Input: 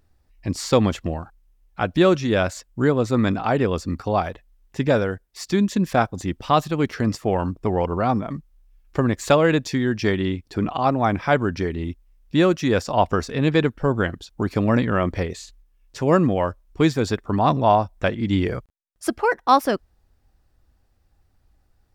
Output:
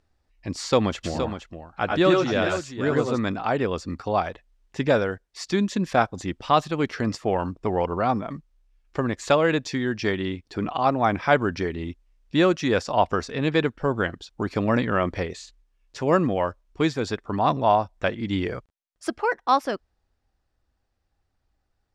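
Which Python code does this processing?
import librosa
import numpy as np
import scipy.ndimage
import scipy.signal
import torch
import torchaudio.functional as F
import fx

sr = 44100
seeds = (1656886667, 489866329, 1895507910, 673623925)

y = fx.echo_multitap(x, sr, ms=(92, 105, 468), db=(-3.5, -5.0, -8.5), at=(1.03, 3.17), fade=0.02)
y = scipy.signal.sosfilt(scipy.signal.butter(2, 7100.0, 'lowpass', fs=sr, output='sos'), y)
y = fx.low_shelf(y, sr, hz=270.0, db=-6.5)
y = fx.rider(y, sr, range_db=10, speed_s=2.0)
y = y * librosa.db_to_amplitude(-2.0)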